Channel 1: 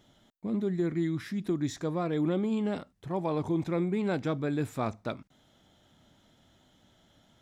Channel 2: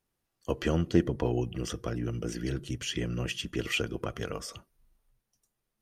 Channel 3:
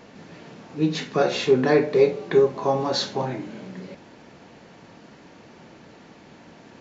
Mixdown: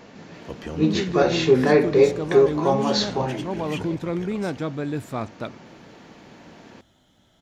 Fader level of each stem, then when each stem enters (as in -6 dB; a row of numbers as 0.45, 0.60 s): +2.5, -6.0, +1.5 dB; 0.35, 0.00, 0.00 s